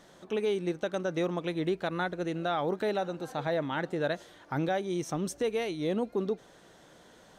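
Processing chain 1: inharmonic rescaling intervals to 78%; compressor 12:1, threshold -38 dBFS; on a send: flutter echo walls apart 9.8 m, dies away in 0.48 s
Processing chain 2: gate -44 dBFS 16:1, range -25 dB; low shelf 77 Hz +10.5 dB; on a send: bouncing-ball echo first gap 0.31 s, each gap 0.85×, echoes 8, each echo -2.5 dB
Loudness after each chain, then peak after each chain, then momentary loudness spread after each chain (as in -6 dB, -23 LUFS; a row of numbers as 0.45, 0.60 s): -42.0, -28.5 LUFS; -29.0, -14.5 dBFS; 8, 3 LU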